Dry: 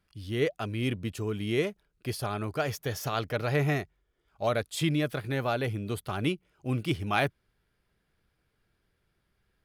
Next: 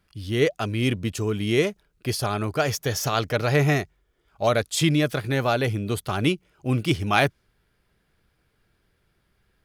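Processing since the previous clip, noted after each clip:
dynamic equaliser 6,200 Hz, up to +6 dB, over −55 dBFS, Q 1.3
level +6.5 dB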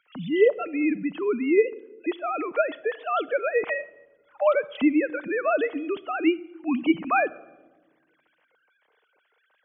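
three sine waves on the formant tracks
rectangular room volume 3,500 cubic metres, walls furnished, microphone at 0.5 metres
multiband upward and downward compressor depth 40%
level −1 dB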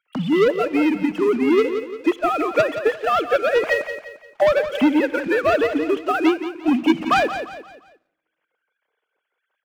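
leveller curve on the samples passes 3
on a send: repeating echo 174 ms, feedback 39%, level −8 dB
on the sum: transient designer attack +5 dB, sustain −3 dB
level −4 dB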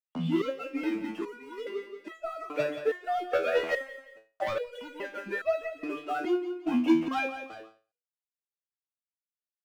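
noise gate −40 dBFS, range −30 dB
step-sequenced resonator 2.4 Hz 82–650 Hz

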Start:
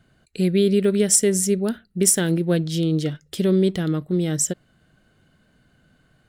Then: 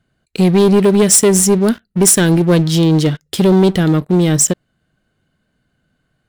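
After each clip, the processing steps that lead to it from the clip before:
leveller curve on the samples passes 3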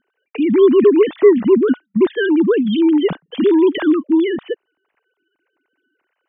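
three sine waves on the formant tracks
level −2 dB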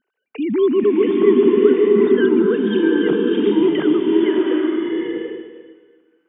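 slow-attack reverb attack 770 ms, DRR −2.5 dB
level −5.5 dB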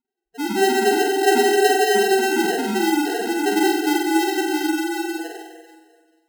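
spectral peaks only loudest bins 2
decimation without filtering 38×
on a send: flutter between parallel walls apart 8 metres, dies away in 0.66 s
on the sum: level −2.5 dB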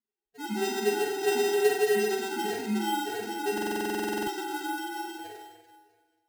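tuned comb filter 210 Hz, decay 0.21 s, harmonics all, mix 90%
bad sample-rate conversion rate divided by 4×, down none, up hold
buffer that repeats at 0:03.53, samples 2,048, times 15

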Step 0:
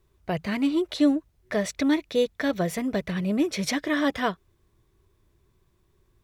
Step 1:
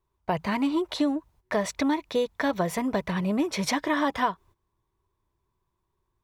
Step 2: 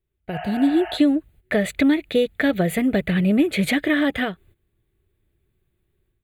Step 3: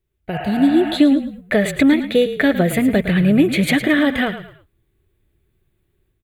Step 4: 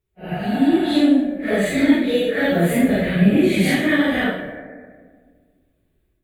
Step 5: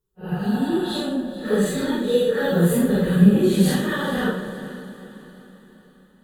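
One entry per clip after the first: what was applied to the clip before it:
noise gate −52 dBFS, range −13 dB; parametric band 950 Hz +13 dB 0.57 octaves; downward compressor 5 to 1, threshold −21 dBFS, peak gain reduction 8 dB
automatic gain control gain up to 9.5 dB; healed spectral selection 0:00.35–0:00.95, 620–3,200 Hz before; phaser with its sweep stopped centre 2,400 Hz, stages 4
echo with shifted repeats 109 ms, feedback 33%, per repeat −32 Hz, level −11.5 dB; level +4 dB
random phases in long frames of 200 ms; on a send at −7 dB: Chebyshev low-pass with heavy ripple 2,400 Hz, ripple 9 dB + convolution reverb RT60 1.7 s, pre-delay 152 ms; on the sum: level −1.5 dB
phaser with its sweep stopped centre 440 Hz, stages 8; feedback delay with all-pass diffusion 461 ms, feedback 47%, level −14.5 dB; level +2 dB

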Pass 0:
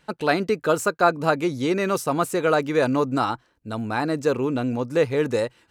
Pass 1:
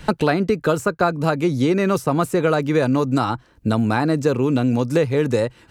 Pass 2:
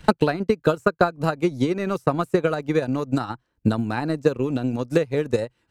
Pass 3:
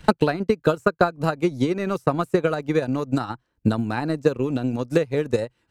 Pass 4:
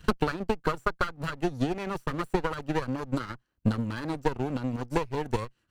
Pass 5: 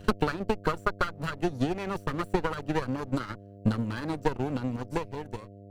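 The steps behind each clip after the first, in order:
low-shelf EQ 200 Hz +11 dB; multiband upward and downward compressor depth 100%
transient designer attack +10 dB, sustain −12 dB; level −7 dB
no processing that can be heard
lower of the sound and its delayed copy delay 0.67 ms; level −5 dB
fade-out on the ending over 1.09 s; hum with harmonics 100 Hz, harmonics 7, −48 dBFS −4 dB per octave

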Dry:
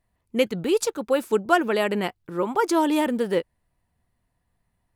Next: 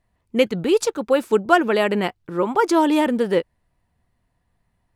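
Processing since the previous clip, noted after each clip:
high-shelf EQ 9,300 Hz −9.5 dB
level +4 dB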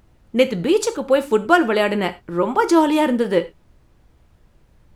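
background noise brown −52 dBFS
reverb whose tail is shaped and stops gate 130 ms falling, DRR 9 dB
level +1 dB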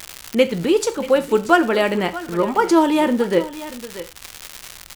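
surface crackle 280 per second −27 dBFS
single-tap delay 634 ms −16 dB
one half of a high-frequency compander encoder only

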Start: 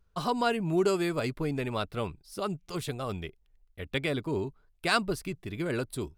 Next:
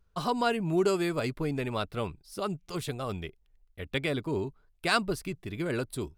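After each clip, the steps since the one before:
no processing that can be heard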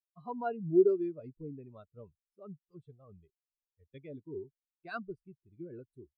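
every bin expanded away from the loudest bin 2.5 to 1
level −3 dB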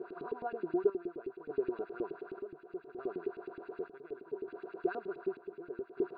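compressor on every frequency bin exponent 0.2
auto-filter band-pass saw up 9.5 Hz 290–3,100 Hz
square-wave tremolo 0.67 Hz, depth 60%, duty 60%
level −2 dB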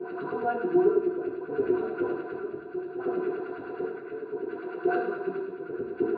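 convolution reverb RT60 0.85 s, pre-delay 3 ms, DRR −6.5 dB
level −6 dB

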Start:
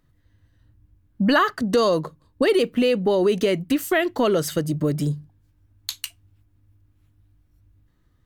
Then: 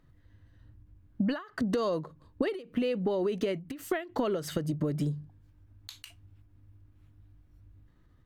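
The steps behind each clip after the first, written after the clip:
high-shelf EQ 4,600 Hz −10 dB
downward compressor 12 to 1, threshold −28 dBFS, peak gain reduction 14.5 dB
every ending faded ahead of time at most 150 dB per second
level +2 dB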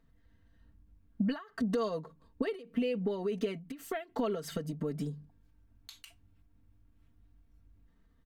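comb filter 4.4 ms, depth 74%
level −6 dB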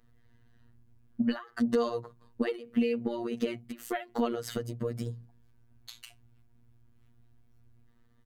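phases set to zero 118 Hz
level +5.5 dB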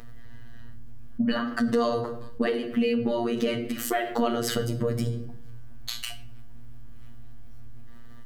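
rectangular room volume 87 cubic metres, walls mixed, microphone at 0.36 metres
envelope flattener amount 50%
level +2 dB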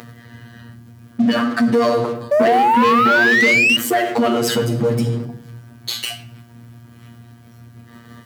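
sound drawn into the spectrogram rise, 0:02.31–0:03.77, 570–2,900 Hz −23 dBFS
leveller curve on the samples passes 3
high-pass filter 110 Hz 24 dB per octave

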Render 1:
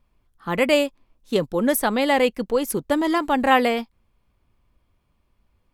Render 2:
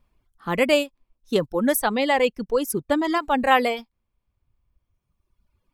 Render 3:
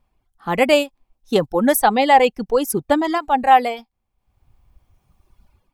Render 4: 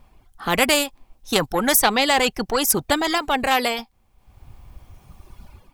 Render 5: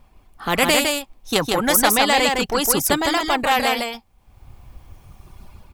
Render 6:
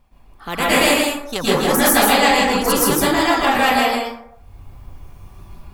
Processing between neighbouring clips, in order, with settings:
reverb reduction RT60 1.8 s
parametric band 780 Hz +11.5 dB 0.24 octaves; automatic gain control gain up to 15 dB; level −1 dB
in parallel at −10.5 dB: soft clipping −14 dBFS, distortion −9 dB; on the sum: every bin compressed towards the loudest bin 2 to 1; level −1 dB
single-tap delay 158 ms −3.5 dB
dense smooth reverb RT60 0.72 s, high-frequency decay 0.45×, pre-delay 105 ms, DRR −8.5 dB; level −6 dB

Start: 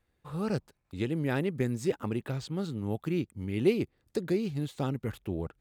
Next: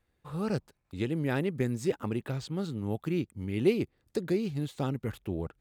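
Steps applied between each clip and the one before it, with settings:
no processing that can be heard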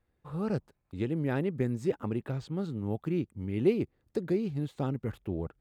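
high-shelf EQ 2,300 Hz −10 dB

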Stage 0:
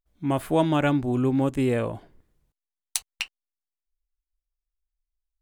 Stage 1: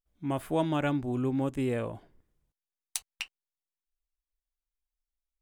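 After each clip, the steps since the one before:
notch filter 4,200 Hz, Q 21
level −6.5 dB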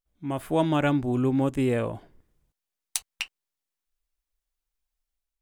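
automatic gain control gain up to 5.5 dB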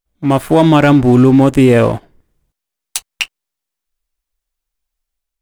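leveller curve on the samples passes 2
boost into a limiter +11 dB
level −1 dB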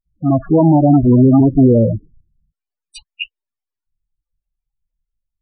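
each half-wave held at its own peak
spectral peaks only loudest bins 8
level −3.5 dB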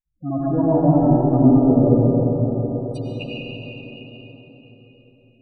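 convolution reverb RT60 4.9 s, pre-delay 55 ms, DRR −8 dB
level −12 dB

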